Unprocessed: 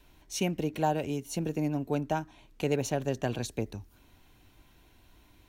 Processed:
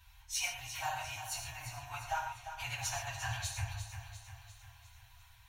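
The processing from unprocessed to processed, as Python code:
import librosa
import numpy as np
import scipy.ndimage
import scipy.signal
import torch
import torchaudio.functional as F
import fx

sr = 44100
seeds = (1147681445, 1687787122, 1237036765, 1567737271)

p1 = fx.phase_scramble(x, sr, seeds[0], window_ms=50)
p2 = scipy.signal.sosfilt(scipy.signal.cheby2(4, 40, [160.0, 520.0], 'bandstop', fs=sr, output='sos'), p1)
p3 = fx.notch_comb(p2, sr, f0_hz=150.0)
p4 = p3 + fx.echo_feedback(p3, sr, ms=349, feedback_pct=54, wet_db=-10.0, dry=0)
p5 = fx.rev_gated(p4, sr, seeds[1], gate_ms=150, shape='flat', drr_db=3.5)
y = p5 * librosa.db_to_amplitude(1.0)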